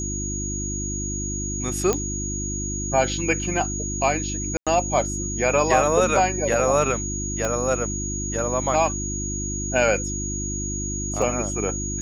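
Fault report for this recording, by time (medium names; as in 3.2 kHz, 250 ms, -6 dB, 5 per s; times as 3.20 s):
hum 50 Hz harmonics 7 -30 dBFS
whine 6.7 kHz -29 dBFS
1.93 s: pop -8 dBFS
4.57–4.67 s: dropout 96 ms
7.45 s: pop -11 dBFS
11.22 s: dropout 2 ms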